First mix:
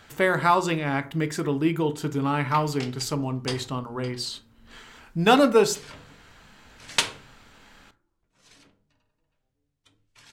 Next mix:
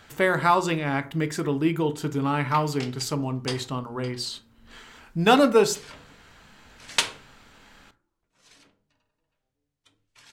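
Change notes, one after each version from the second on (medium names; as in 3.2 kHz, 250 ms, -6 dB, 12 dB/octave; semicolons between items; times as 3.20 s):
background: add bass shelf 240 Hz -6 dB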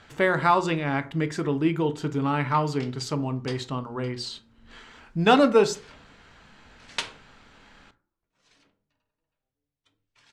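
background -5.5 dB; master: add distance through air 66 m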